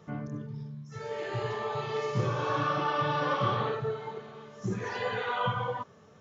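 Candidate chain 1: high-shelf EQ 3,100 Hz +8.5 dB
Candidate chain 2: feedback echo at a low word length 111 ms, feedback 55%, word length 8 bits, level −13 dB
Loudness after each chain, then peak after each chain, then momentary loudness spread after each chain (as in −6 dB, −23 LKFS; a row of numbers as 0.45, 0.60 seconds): −31.0, −32.0 LKFS; −16.0, −16.5 dBFS; 13, 13 LU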